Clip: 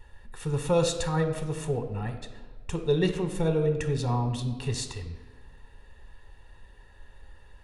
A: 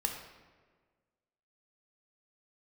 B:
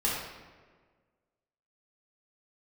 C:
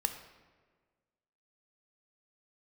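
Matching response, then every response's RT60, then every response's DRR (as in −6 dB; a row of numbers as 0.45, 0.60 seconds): C; 1.5, 1.5, 1.5 seconds; 2.5, −6.5, 7.5 decibels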